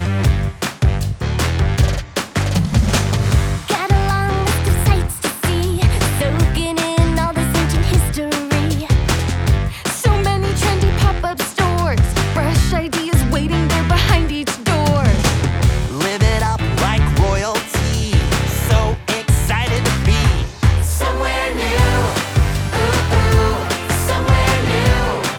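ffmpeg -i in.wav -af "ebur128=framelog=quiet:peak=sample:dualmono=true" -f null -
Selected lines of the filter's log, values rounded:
Integrated loudness:
  I:         -13.7 LUFS
  Threshold: -23.7 LUFS
Loudness range:
  LRA:         1.1 LU
  Threshold: -33.7 LUFS
  LRA low:   -14.1 LUFS
  LRA high:  -13.0 LUFS
Sample peak:
  Peak:       -2.2 dBFS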